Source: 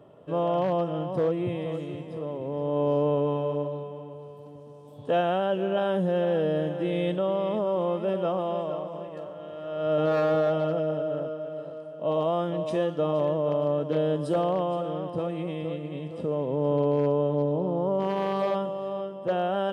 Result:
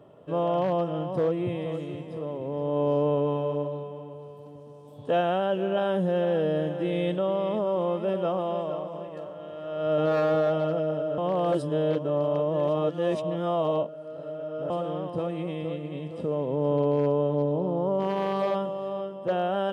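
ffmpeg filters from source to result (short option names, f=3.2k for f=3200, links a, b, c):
-filter_complex "[0:a]asplit=3[a][b][c];[a]atrim=end=11.182[d];[b]atrim=start=11.178:end=14.702,asetpts=PTS-STARTPTS,areverse[e];[c]atrim=start=14.698[f];[d][e]acrossfade=d=0.004:c1=hsin:c2=hsin[g];[g][f]acrossfade=d=0.004:c1=hsin:c2=hsin"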